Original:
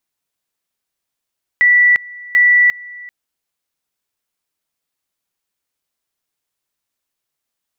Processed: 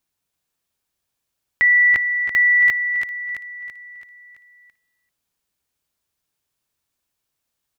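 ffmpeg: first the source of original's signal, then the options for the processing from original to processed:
-f lavfi -i "aevalsrc='pow(10,(-7-23*gte(mod(t,0.74),0.35))/20)*sin(2*PI*1960*t)':d=1.48:s=44100"
-filter_complex "[0:a]equalizer=f=70:t=o:w=2.6:g=8,bandreject=f=2k:w=22,asplit=2[a][b];[b]aecho=0:1:333|666|999|1332|1665|1998:0.447|0.223|0.112|0.0558|0.0279|0.014[c];[a][c]amix=inputs=2:normalize=0"

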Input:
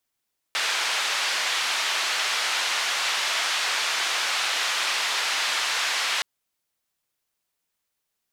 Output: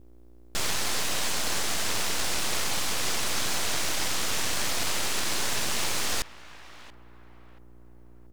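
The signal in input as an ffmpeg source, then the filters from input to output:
-f lavfi -i "anoisesrc=c=white:d=5.67:r=44100:seed=1,highpass=f=910,lowpass=f=4100,volume=-12.6dB"
-filter_complex "[0:a]aeval=exprs='val(0)+0.00398*(sin(2*PI*60*n/s)+sin(2*PI*2*60*n/s)/2+sin(2*PI*3*60*n/s)/3+sin(2*PI*4*60*n/s)/4+sin(2*PI*5*60*n/s)/5)':c=same,asplit=2[a][b];[b]adelay=682,lowpass=f=880:p=1,volume=-13.5dB,asplit=2[c][d];[d]adelay=682,lowpass=f=880:p=1,volume=0.48,asplit=2[e][f];[f]adelay=682,lowpass=f=880:p=1,volume=0.48,asplit=2[g][h];[h]adelay=682,lowpass=f=880:p=1,volume=0.48,asplit=2[i][j];[j]adelay=682,lowpass=f=880:p=1,volume=0.48[k];[a][c][e][g][i][k]amix=inputs=6:normalize=0,aeval=exprs='abs(val(0))':c=same"

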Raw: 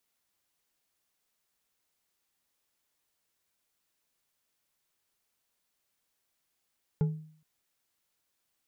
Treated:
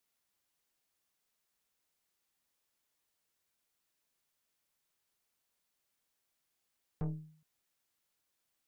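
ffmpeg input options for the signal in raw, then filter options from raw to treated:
-f lavfi -i "aevalsrc='0.0891*pow(10,-3*t/0.54)*sin(2*PI*156*t)+0.0266*pow(10,-3*t/0.266)*sin(2*PI*430.1*t)+0.00794*pow(10,-3*t/0.166)*sin(2*PI*843*t)+0.00237*pow(10,-3*t/0.117)*sin(2*PI*1393.5*t)+0.000708*pow(10,-3*t/0.088)*sin(2*PI*2081*t)':d=0.42:s=44100"
-af "aeval=exprs='(tanh(44.7*val(0)+0.6)-tanh(0.6))/44.7':c=same"

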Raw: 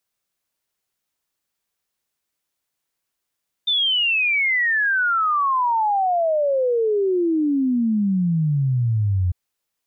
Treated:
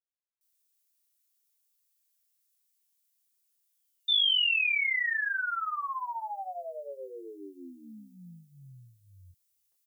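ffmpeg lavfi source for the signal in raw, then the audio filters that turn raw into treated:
-f lavfi -i "aevalsrc='0.15*clip(min(t,5.65-t)/0.01,0,1)*sin(2*PI*3600*5.65/log(87/3600)*(exp(log(87/3600)*t/5.65)-1))':d=5.65:s=44100"
-filter_complex "[0:a]aderivative,asplit=2[a][b];[b]adelay=23,volume=-3dB[c];[a][c]amix=inputs=2:normalize=0,acrossover=split=380[d][e];[e]adelay=410[f];[d][f]amix=inputs=2:normalize=0"

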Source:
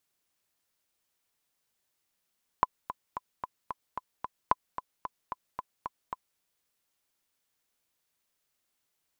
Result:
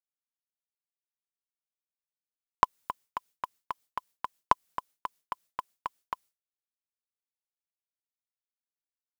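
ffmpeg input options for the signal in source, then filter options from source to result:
-f lavfi -i "aevalsrc='pow(10,(-8.5-12.5*gte(mod(t,7*60/223),60/223))/20)*sin(2*PI*1010*mod(t,60/223))*exp(-6.91*mod(t,60/223)/0.03)':d=3.76:s=44100"
-filter_complex "[0:a]agate=range=-33dB:threshold=-52dB:ratio=3:detection=peak,highshelf=f=4.3k:g=6.5,asplit=2[a][b];[b]aeval=exprs='val(0)*gte(abs(val(0)),0.0158)':c=same,volume=-5.5dB[c];[a][c]amix=inputs=2:normalize=0"

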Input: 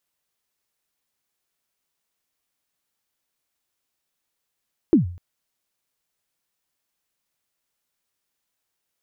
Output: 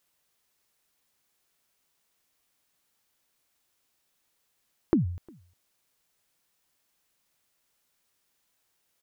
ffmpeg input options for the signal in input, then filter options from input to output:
-f lavfi -i "aevalsrc='0.398*pow(10,-3*t/0.47)*sin(2*PI*(370*0.126/log(88/370)*(exp(log(88/370)*min(t,0.126)/0.126)-1)+88*max(t-0.126,0)))':d=0.25:s=44100"
-filter_complex "[0:a]asplit=2[a][b];[b]alimiter=limit=-16.5dB:level=0:latency=1,volume=-2dB[c];[a][c]amix=inputs=2:normalize=0,acompressor=threshold=-23dB:ratio=4,asplit=2[d][e];[e]adelay=355.7,volume=-28dB,highshelf=f=4k:g=-8[f];[d][f]amix=inputs=2:normalize=0"

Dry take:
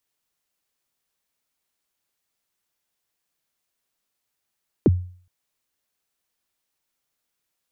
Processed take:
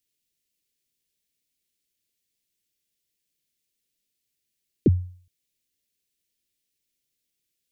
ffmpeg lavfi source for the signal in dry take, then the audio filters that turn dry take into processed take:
-f lavfi -i "aevalsrc='0.355*pow(10,-3*t/0.47)*sin(2*PI*(460*0.031/log(90/460)*(exp(log(90/460)*min(t,0.031)/0.031)-1)+90*max(t-0.031,0)))':d=0.42:s=44100"
-af "asuperstop=centerf=1000:order=4:qfactor=0.54"

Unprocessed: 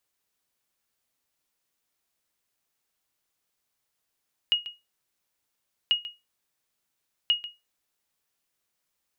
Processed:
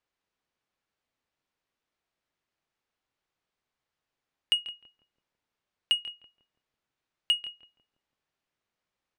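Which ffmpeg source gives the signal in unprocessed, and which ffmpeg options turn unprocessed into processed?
-f lavfi -i "aevalsrc='0.188*(sin(2*PI*2880*mod(t,1.39))*exp(-6.91*mod(t,1.39)/0.22)+0.178*sin(2*PI*2880*max(mod(t,1.39)-0.14,0))*exp(-6.91*max(mod(t,1.39)-0.14,0)/0.22))':d=4.17:s=44100"
-filter_complex "[0:a]adynamicsmooth=sensitivity=3:basefreq=4k,asplit=2[a][b];[b]adelay=166,lowpass=f=890:p=1,volume=-10dB,asplit=2[c][d];[d]adelay=166,lowpass=f=890:p=1,volume=0.51,asplit=2[e][f];[f]adelay=166,lowpass=f=890:p=1,volume=0.51,asplit=2[g][h];[h]adelay=166,lowpass=f=890:p=1,volume=0.51,asplit=2[i][j];[j]adelay=166,lowpass=f=890:p=1,volume=0.51,asplit=2[k][l];[l]adelay=166,lowpass=f=890:p=1,volume=0.51[m];[a][c][e][g][i][k][m]amix=inputs=7:normalize=0"

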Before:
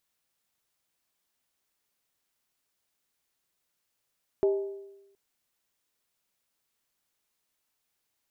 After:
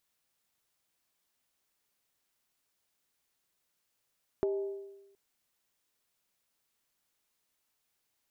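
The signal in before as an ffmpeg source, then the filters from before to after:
-f lavfi -i "aevalsrc='0.112*pow(10,-3*t/0.99)*sin(2*PI*395*t)+0.0316*pow(10,-3*t/0.784)*sin(2*PI*629.6*t)+0.00891*pow(10,-3*t/0.677)*sin(2*PI*843.7*t)+0.00251*pow(10,-3*t/0.653)*sin(2*PI*906.9*t)+0.000708*pow(10,-3*t/0.608)*sin(2*PI*1047.9*t)':d=0.72:s=44100"
-af "acompressor=threshold=-29dB:ratio=6"

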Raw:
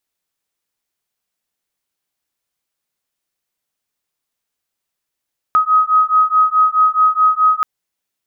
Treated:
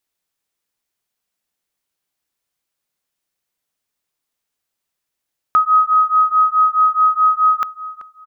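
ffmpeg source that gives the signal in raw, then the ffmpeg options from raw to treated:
-f lavfi -i "aevalsrc='0.224*(sin(2*PI*1260*t)+sin(2*PI*1264.7*t))':d=2.08:s=44100"
-filter_complex "[0:a]asplit=2[a][b];[b]adelay=383,lowpass=f=1.2k:p=1,volume=-12.5dB,asplit=2[c][d];[d]adelay=383,lowpass=f=1.2k:p=1,volume=0.36,asplit=2[e][f];[f]adelay=383,lowpass=f=1.2k:p=1,volume=0.36,asplit=2[g][h];[h]adelay=383,lowpass=f=1.2k:p=1,volume=0.36[i];[a][c][e][g][i]amix=inputs=5:normalize=0"

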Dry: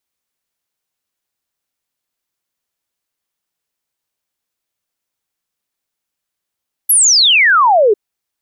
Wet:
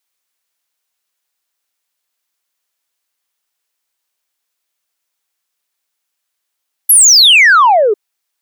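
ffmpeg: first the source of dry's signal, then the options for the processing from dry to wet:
-f lavfi -i "aevalsrc='0.473*clip(min(t,1.05-t)/0.01,0,1)*sin(2*PI*12000*1.05/log(390/12000)*(exp(log(390/12000)*t/1.05)-1))':d=1.05:s=44100"
-af "highpass=f=830:p=1,acontrast=52"

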